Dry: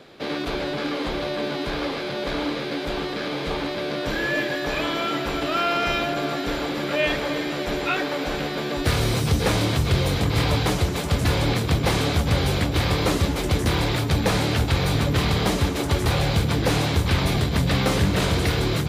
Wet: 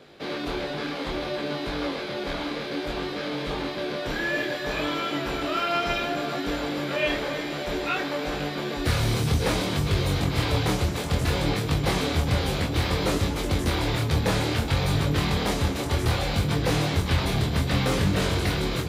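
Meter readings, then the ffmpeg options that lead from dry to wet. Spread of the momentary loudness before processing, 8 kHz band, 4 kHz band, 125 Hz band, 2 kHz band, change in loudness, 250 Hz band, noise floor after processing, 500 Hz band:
6 LU, -3.0 dB, -3.0 dB, -3.0 dB, -3.0 dB, -3.0 dB, -3.0 dB, -32 dBFS, -3.0 dB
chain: -af "flanger=delay=20:depth=6.2:speed=0.6"

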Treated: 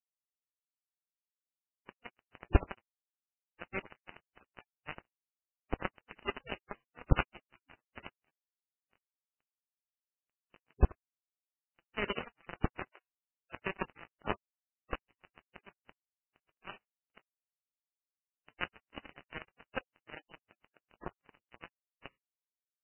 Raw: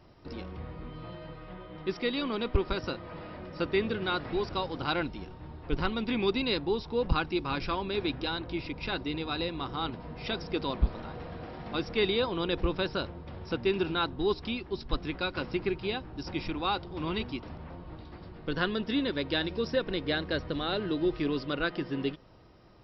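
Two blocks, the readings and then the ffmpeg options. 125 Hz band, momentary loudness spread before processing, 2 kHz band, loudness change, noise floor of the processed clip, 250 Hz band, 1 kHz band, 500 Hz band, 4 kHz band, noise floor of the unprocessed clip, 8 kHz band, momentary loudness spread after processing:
-4.5 dB, 14 LU, -9.0 dB, -7.5 dB, under -85 dBFS, -14.5 dB, -10.5 dB, -15.0 dB, -17.5 dB, -47 dBFS, no reading, 23 LU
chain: -filter_complex "[0:a]asplit=2[s0][s1];[s1]adelay=79,lowpass=f=1000:p=1,volume=0.562,asplit=2[s2][s3];[s3]adelay=79,lowpass=f=1000:p=1,volume=0.25,asplit=2[s4][s5];[s5]adelay=79,lowpass=f=1000:p=1,volume=0.25[s6];[s0][s2][s4][s6]amix=inputs=4:normalize=0,aresample=11025,acrusher=bits=2:mix=0:aa=0.5,aresample=44100,volume=1.5" -ar 8000 -c:a libmp3lame -b:a 8k

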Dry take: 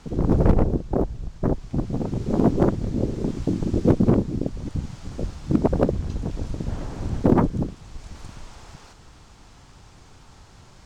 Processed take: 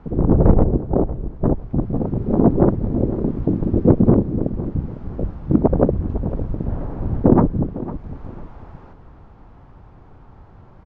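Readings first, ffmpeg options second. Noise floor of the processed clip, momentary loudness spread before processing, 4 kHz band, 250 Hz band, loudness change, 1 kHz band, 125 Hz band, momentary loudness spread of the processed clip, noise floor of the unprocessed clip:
-45 dBFS, 14 LU, under -15 dB, +4.5 dB, +4.5 dB, +3.0 dB, +4.5 dB, 14 LU, -49 dBFS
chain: -filter_complex "[0:a]lowpass=1100,asplit=2[s0][s1];[s1]aecho=0:1:504|1008|1512:0.178|0.0462|0.012[s2];[s0][s2]amix=inputs=2:normalize=0,volume=1.68"

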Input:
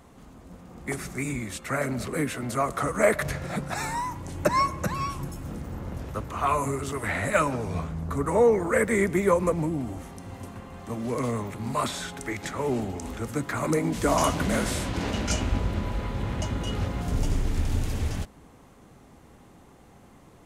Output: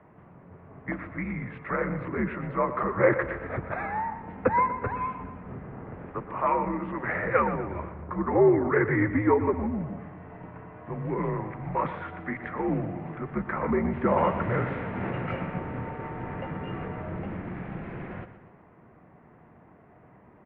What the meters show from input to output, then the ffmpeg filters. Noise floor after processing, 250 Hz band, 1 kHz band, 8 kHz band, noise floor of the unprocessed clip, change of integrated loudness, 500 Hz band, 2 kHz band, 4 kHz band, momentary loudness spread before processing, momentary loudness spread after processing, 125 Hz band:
-55 dBFS, 0.0 dB, 0.0 dB, under -40 dB, -53 dBFS, -1.0 dB, -1.0 dB, -1.0 dB, under -15 dB, 13 LU, 16 LU, -3.0 dB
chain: -af "aecho=1:1:121|242|363|484|605:0.237|0.114|0.0546|0.0262|0.0126,highpass=f=190:t=q:w=0.5412,highpass=f=190:t=q:w=1.307,lowpass=f=2300:t=q:w=0.5176,lowpass=f=2300:t=q:w=0.7071,lowpass=f=2300:t=q:w=1.932,afreqshift=-87"

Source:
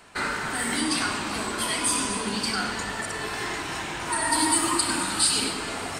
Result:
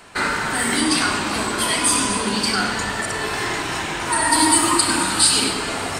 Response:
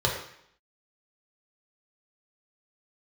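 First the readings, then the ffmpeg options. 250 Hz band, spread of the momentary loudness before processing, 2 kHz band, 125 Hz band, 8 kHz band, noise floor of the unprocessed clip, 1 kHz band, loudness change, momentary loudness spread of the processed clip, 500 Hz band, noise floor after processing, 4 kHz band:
+7.0 dB, 9 LU, +6.5 dB, +7.0 dB, +6.5 dB, -33 dBFS, +7.0 dB, +6.5 dB, 9 LU, +7.0 dB, -26 dBFS, +6.5 dB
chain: -filter_complex "[0:a]bandreject=f=60:t=h:w=6,bandreject=f=120:t=h:w=6,asplit=2[s0][s1];[1:a]atrim=start_sample=2205,adelay=39[s2];[s1][s2]afir=irnorm=-1:irlink=0,volume=0.0596[s3];[s0][s3]amix=inputs=2:normalize=0,volume=2.11"

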